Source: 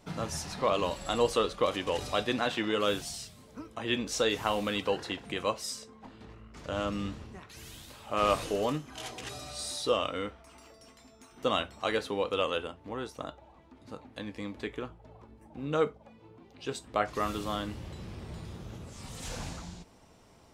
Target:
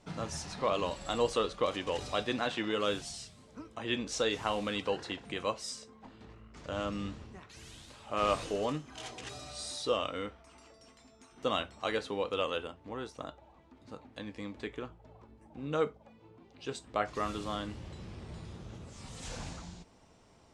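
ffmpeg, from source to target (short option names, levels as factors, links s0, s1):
-af "lowpass=f=9400:w=0.5412,lowpass=f=9400:w=1.3066,volume=0.708"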